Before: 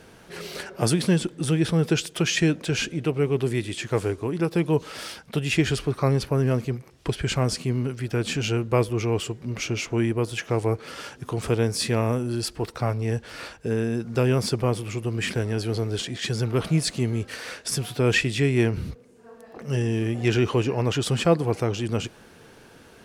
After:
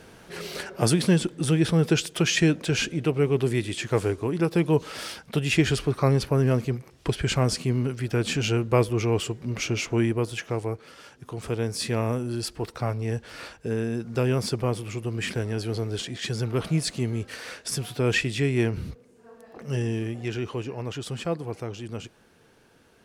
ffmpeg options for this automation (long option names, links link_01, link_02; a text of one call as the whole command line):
ffmpeg -i in.wav -af "volume=9dB,afade=type=out:start_time=9.98:duration=0.99:silence=0.266073,afade=type=in:start_time=10.97:duration=1.04:silence=0.375837,afade=type=out:start_time=19.88:duration=0.41:silence=0.473151" out.wav